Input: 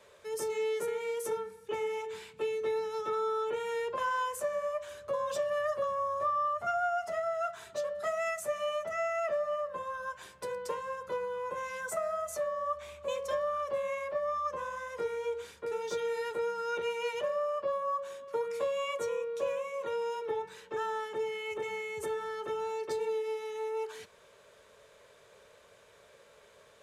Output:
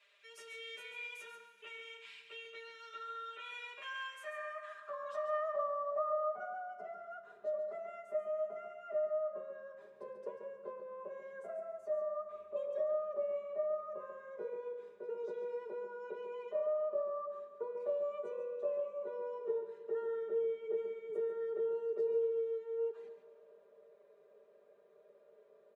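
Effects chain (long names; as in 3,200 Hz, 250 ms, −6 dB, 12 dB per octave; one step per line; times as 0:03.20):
comb filter 5.2 ms, depth 96%
on a send: single-tap delay 146 ms −8.5 dB
on the sum: dense smooth reverb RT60 2.3 s, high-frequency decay 0.9×, pre-delay 0 ms, DRR 10.5 dB
band-pass filter sweep 2,600 Hz → 410 Hz, 0:04.11–0:06.97
wrong playback speed 24 fps film run at 25 fps
level −3 dB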